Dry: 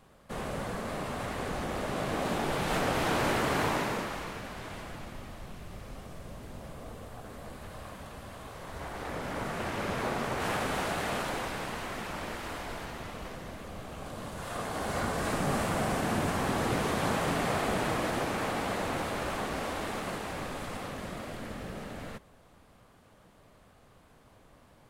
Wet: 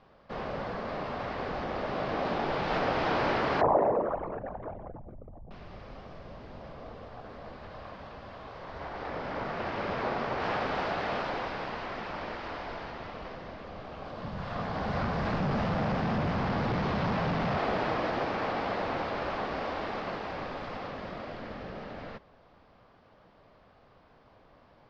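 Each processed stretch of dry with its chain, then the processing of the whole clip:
3.61–5.51 formant sharpening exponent 3 + bell 610 Hz +9 dB 1 oct
14.23–17.57 resonant low shelf 250 Hz +7 dB, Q 1.5 + hard clip -24 dBFS + Doppler distortion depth 0.26 ms
whole clip: elliptic low-pass 5100 Hz, stop band 80 dB; bell 700 Hz +5.5 dB 2.2 oct; gain -2.5 dB

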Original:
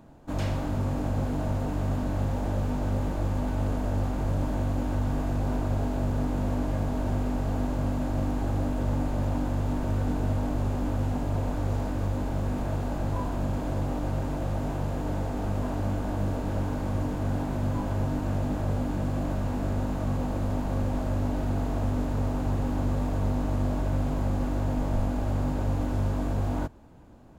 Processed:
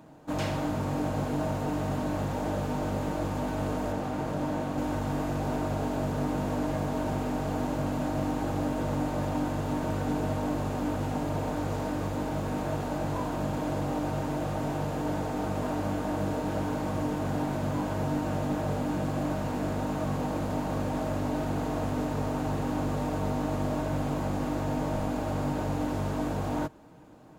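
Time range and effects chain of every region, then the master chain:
3.92–4.78 high shelf 5000 Hz -5 dB + notches 50/100/150 Hz
whole clip: HPF 200 Hz 6 dB/oct; comb 6.5 ms, depth 39%; gain +2.5 dB

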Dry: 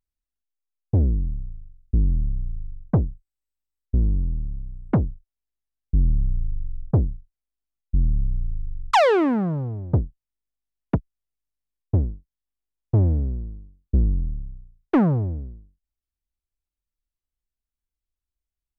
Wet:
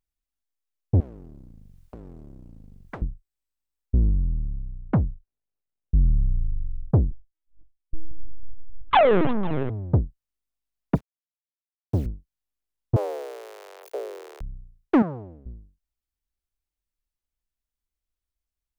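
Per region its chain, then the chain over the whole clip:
1–3.02 compressor 1.5:1, threshold -45 dBFS + spectral compressor 4:1
4.1–6.6 median filter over 41 samples + LPF 3300 Hz 6 dB/oct + dynamic EQ 380 Hz, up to -6 dB, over -39 dBFS, Q 1.2
7.11–9.7 regenerating reverse delay 0.252 s, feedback 58%, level -12.5 dB + LPC vocoder at 8 kHz pitch kept
10.95–12.06 level-crossing sampler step -44.5 dBFS + HPF 110 Hz
12.96–14.41 zero-crossing step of -29.5 dBFS + HPF 220 Hz 24 dB/oct + frequency shift +220 Hz
15.02–15.46 HPF 770 Hz 6 dB/oct + high shelf 2100 Hz -8.5 dB
whole clip: dry

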